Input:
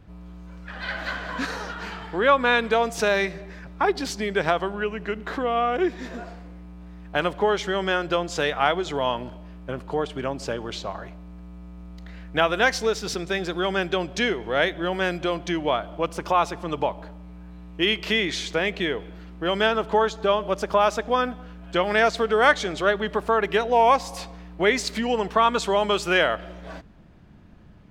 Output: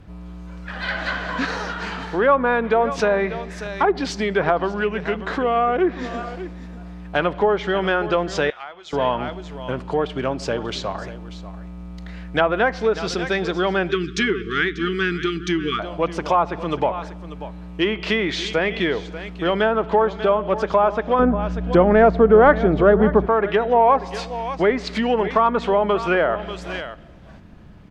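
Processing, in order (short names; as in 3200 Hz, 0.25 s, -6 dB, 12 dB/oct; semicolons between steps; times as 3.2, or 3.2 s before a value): on a send: echo 0.589 s -15.5 dB; 13.91–15.8 on the sum: spectral delete 470–1100 Hz; in parallel at -5 dB: soft clip -21.5 dBFS, distortion -8 dB; 21.19–23.26 on the sum: low shelf 450 Hz +11.5 dB; treble ducked by the level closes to 1300 Hz, closed at -14.5 dBFS; 8.5–8.93 pre-emphasis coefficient 0.97; gain +1.5 dB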